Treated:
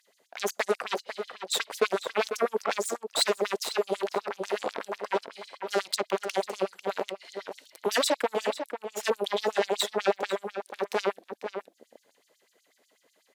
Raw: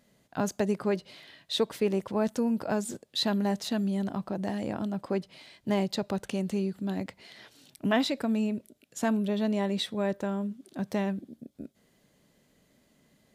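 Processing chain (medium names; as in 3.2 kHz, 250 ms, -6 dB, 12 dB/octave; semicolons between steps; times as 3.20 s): Chebyshev shaper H 8 -12 dB, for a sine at -14 dBFS; echo from a far wall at 85 m, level -8 dB; LFO high-pass sine 8.1 Hz 420–6400 Hz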